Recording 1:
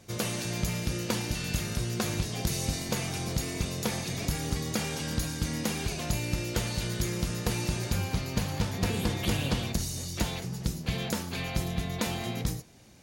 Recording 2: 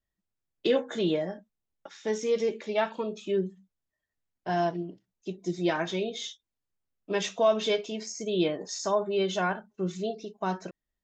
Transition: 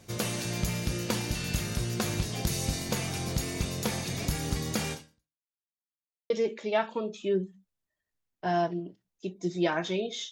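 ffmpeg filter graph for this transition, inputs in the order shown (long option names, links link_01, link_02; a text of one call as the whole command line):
ffmpeg -i cue0.wav -i cue1.wav -filter_complex "[0:a]apad=whole_dur=10.31,atrim=end=10.31,asplit=2[link_01][link_02];[link_01]atrim=end=5.49,asetpts=PTS-STARTPTS,afade=type=out:start_time=4.92:duration=0.57:curve=exp[link_03];[link_02]atrim=start=5.49:end=6.3,asetpts=PTS-STARTPTS,volume=0[link_04];[1:a]atrim=start=2.33:end=6.34,asetpts=PTS-STARTPTS,afade=type=in:duration=0.004:curve=hsin[link_05];[link_03][link_04][link_05]concat=n=3:v=0:a=1" out.wav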